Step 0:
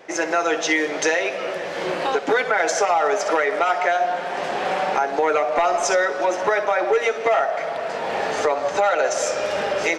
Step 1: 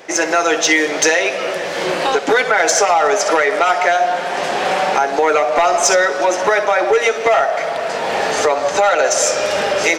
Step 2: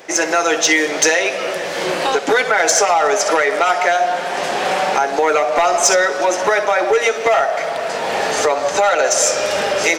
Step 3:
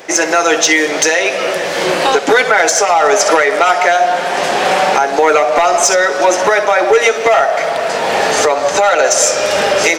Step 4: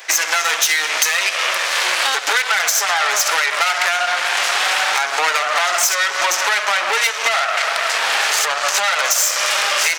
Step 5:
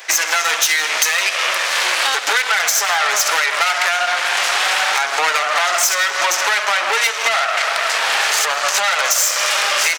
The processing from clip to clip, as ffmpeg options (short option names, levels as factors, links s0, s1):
-filter_complex "[0:a]highshelf=f=4100:g=8.5,asplit=2[s0][s1];[s1]acontrast=87,volume=0.794[s2];[s0][s2]amix=inputs=2:normalize=0,volume=0.668"
-af "highshelf=f=7400:g=5.5,volume=0.891"
-af "alimiter=limit=0.473:level=0:latency=1:release=374,volume=1.88"
-af "aeval=exprs='0.891*(cos(1*acos(clip(val(0)/0.891,-1,1)))-cos(1*PI/2))+0.251*(cos(4*acos(clip(val(0)/0.891,-1,1)))-cos(4*PI/2))+0.0708*(cos(8*acos(clip(val(0)/0.891,-1,1)))-cos(8*PI/2))':c=same,highpass=1300,acompressor=threshold=0.178:ratio=6,volume=1.26"
-filter_complex "[0:a]aecho=1:1:163:0.119,asplit=2[s0][s1];[s1]asoftclip=type=tanh:threshold=0.251,volume=0.251[s2];[s0][s2]amix=inputs=2:normalize=0,volume=0.891"